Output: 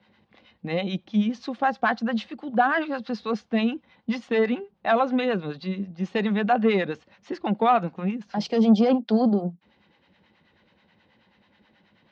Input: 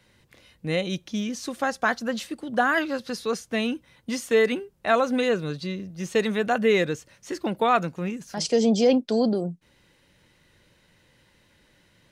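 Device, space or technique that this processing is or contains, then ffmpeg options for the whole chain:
guitar amplifier with harmonic tremolo: -filter_complex "[0:a]acrossover=split=670[s0][s1];[s0]aeval=exprs='val(0)*(1-0.7/2+0.7/2*cos(2*PI*9.3*n/s))':c=same[s2];[s1]aeval=exprs='val(0)*(1-0.7/2-0.7/2*cos(2*PI*9.3*n/s))':c=same[s3];[s2][s3]amix=inputs=2:normalize=0,asoftclip=type=tanh:threshold=0.178,highpass=85,equalizer=f=130:t=q:w=4:g=-8,equalizer=f=210:t=q:w=4:g=9,equalizer=f=780:t=q:w=4:g=9,equalizer=f=1100:t=q:w=4:g=3,lowpass=f=4100:w=0.5412,lowpass=f=4100:w=1.3066,volume=1.19"

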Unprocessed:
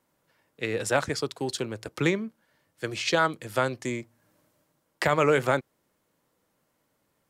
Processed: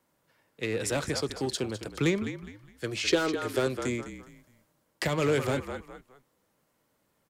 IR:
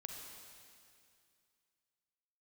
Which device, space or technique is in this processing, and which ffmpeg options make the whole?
one-band saturation: -filter_complex "[0:a]asettb=1/sr,asplit=3[s0][s1][s2];[s0]atrim=end=3.044[s3];[s1]atrim=start=3.04:end=3.67,asetpts=PTS-STARTPTS,afade=t=in:d=0.004:c=qsin,afade=t=out:st=0.626:d=0.004:c=qsin,equalizer=f=160:t=o:w=0.67:g=-6,equalizer=f=400:t=o:w=0.67:g=11,equalizer=f=1600:t=o:w=0.67:g=5[s4];[s2]atrim=start=3.666[s5];[s3][s4]acrossfade=d=0.004:c1=hsin:c2=qsin[s6];[s6][s5]acrossfade=d=0.004:c1=qsin:c2=hsin,asplit=4[s7][s8][s9][s10];[s8]adelay=206,afreqshift=-44,volume=0.237[s11];[s9]adelay=412,afreqshift=-88,volume=0.0708[s12];[s10]adelay=618,afreqshift=-132,volume=0.0214[s13];[s7][s11][s12][s13]amix=inputs=4:normalize=0,acrossover=split=430|2500[s14][s15][s16];[s15]asoftclip=type=tanh:threshold=0.0237[s17];[s14][s17][s16]amix=inputs=3:normalize=0"

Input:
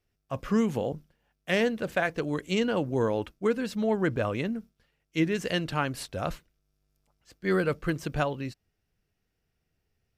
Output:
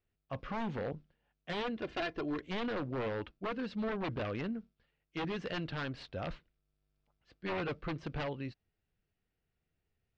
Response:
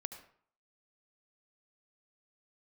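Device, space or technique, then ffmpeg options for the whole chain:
synthesiser wavefolder: -filter_complex "[0:a]aeval=exprs='0.0596*(abs(mod(val(0)/0.0596+3,4)-2)-1)':c=same,lowpass=f=4200:w=0.5412,lowpass=f=4200:w=1.3066,asettb=1/sr,asplit=3[s0][s1][s2];[s0]atrim=end=1.764[s3];[s1]atrim=start=1.76:end=2.41,asetpts=PTS-STARTPTS,afade=t=in:d=0.004:c=qsin,afade=t=out:st=0.646:d=0.004:c=qsin,aecho=1:1:2.9:0.55,atrim=end_sample=28665[s4];[s2]atrim=start=2.406[s5];[s3][s4]acrossfade=d=0.004:c1=hsin:c2=qsin[s6];[s6][s5]acrossfade=d=0.004:c1=qsin:c2=hsin,volume=0.501"

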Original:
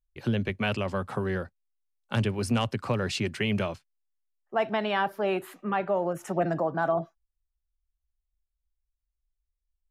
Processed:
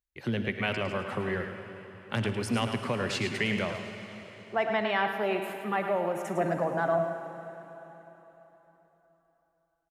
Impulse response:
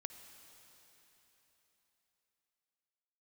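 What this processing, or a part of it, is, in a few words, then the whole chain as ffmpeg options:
PA in a hall: -filter_complex "[0:a]highpass=f=120:p=1,equalizer=f=2000:t=o:w=0.32:g=7,aecho=1:1:107:0.376[s0];[1:a]atrim=start_sample=2205[s1];[s0][s1]afir=irnorm=-1:irlink=0,volume=1.26"

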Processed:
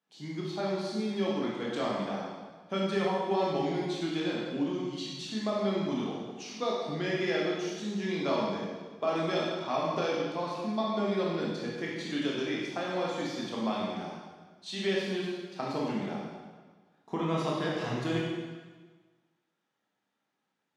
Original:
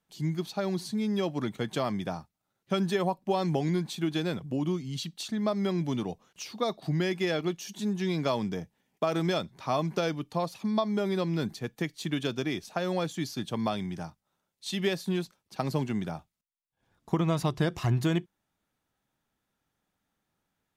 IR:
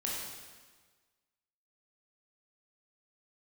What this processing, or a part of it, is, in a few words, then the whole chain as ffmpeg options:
supermarket ceiling speaker: -filter_complex "[0:a]highpass=240,lowpass=5600[s0];[1:a]atrim=start_sample=2205[s1];[s0][s1]afir=irnorm=-1:irlink=0,volume=0.708"

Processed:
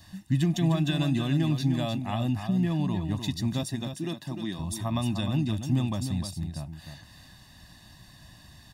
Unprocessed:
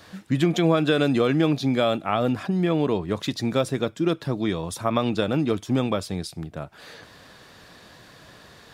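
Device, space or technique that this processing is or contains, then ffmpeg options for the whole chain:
smiley-face EQ: -filter_complex "[0:a]lowshelf=f=89:g=9,equalizer=f=1100:t=o:w=2.8:g=-7.5,highshelf=f=6800:g=4.5,asettb=1/sr,asplit=3[s0][s1][s2];[s0]atrim=end=3.634[s3];[s1]atrim=start=3.63:end=4.59,asetpts=PTS-STARTPTS,afade=t=in:d=0.004:c=qsin,afade=t=out:st=0.956:d=0.004:c=qsin,highpass=220[s4];[s2]atrim=start=4.586[s5];[s3][s4]acrossfade=d=0.004:c1=hsin:c2=qsin[s6];[s6][s5]acrossfade=d=0.004:c1=qsin:c2=hsin,aecho=1:1:1.1:0.94,aecho=1:1:304:0.398,volume=0.501"

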